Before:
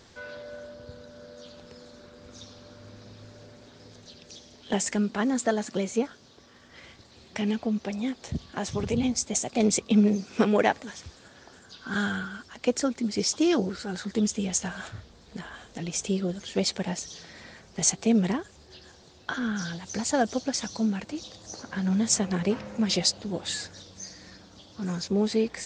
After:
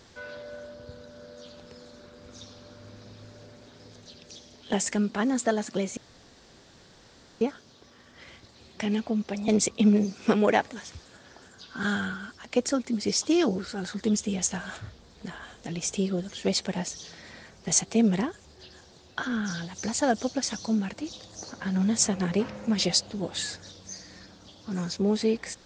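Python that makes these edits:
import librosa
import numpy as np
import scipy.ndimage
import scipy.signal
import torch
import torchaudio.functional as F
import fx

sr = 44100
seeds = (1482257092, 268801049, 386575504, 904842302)

y = fx.edit(x, sr, fx.insert_room_tone(at_s=5.97, length_s=1.44),
    fx.cut(start_s=8.04, length_s=1.55), tone=tone)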